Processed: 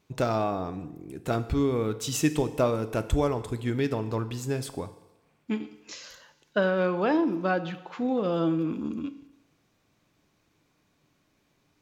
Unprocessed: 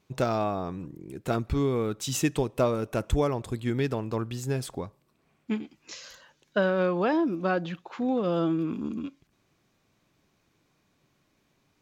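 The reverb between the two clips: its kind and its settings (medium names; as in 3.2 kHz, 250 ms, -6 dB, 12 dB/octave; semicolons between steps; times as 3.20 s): FDN reverb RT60 1 s, low-frequency decay 0.75×, high-frequency decay 0.95×, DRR 10.5 dB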